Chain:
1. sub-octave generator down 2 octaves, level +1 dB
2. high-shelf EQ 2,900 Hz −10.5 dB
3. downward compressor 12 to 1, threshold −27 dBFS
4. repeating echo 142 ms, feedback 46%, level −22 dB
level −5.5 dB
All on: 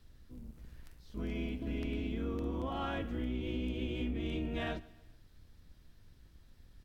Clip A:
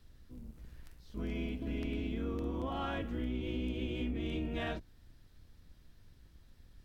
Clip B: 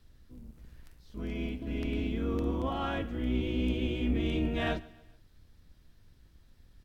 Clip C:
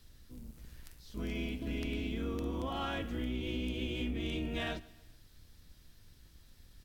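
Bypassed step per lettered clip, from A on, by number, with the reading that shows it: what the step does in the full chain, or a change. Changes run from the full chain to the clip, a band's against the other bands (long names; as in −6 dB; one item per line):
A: 4, echo-to-direct ratio −21.0 dB to none audible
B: 3, average gain reduction 2.5 dB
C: 2, 4 kHz band +5.5 dB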